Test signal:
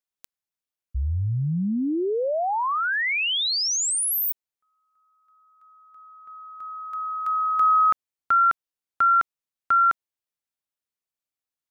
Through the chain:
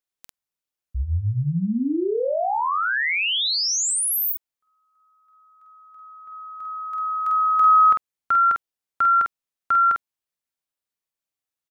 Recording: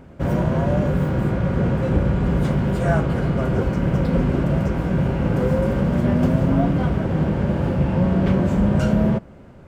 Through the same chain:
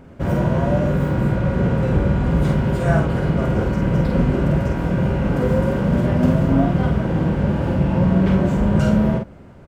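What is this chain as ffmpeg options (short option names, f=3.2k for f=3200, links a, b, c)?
-filter_complex "[0:a]asplit=2[a][b];[b]adelay=48,volume=-4dB[c];[a][c]amix=inputs=2:normalize=0"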